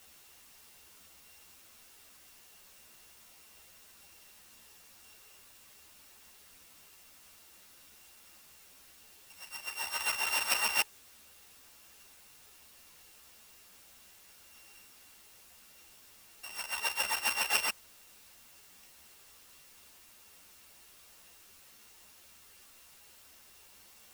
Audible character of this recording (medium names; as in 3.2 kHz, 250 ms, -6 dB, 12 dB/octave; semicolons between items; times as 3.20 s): a buzz of ramps at a fixed pitch in blocks of 16 samples; tremolo saw down 4 Hz, depth 45%; a quantiser's noise floor 10-bit, dither triangular; a shimmering, thickened sound